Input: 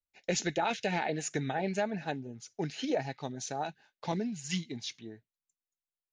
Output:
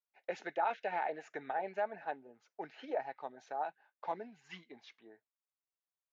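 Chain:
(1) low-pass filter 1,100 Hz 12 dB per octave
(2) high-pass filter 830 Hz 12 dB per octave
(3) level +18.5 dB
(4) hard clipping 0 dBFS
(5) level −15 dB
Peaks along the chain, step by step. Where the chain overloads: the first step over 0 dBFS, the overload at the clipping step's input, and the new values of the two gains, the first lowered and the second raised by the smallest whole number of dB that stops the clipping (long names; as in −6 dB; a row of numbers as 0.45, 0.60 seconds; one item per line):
−20.0, −23.5, −5.0, −5.0, −20.0 dBFS
no step passes full scale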